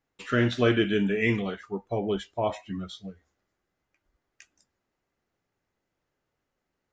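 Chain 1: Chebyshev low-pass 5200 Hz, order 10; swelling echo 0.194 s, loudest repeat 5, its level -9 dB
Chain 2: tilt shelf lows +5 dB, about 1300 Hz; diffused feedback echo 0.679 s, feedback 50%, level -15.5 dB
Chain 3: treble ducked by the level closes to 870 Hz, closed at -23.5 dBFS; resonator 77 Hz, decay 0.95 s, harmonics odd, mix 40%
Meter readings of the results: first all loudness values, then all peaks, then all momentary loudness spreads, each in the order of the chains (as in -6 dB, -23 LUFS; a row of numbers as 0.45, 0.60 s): -27.5, -23.5, -32.5 LUFS; -10.5, -7.5, -16.5 dBFS; 19, 18, 13 LU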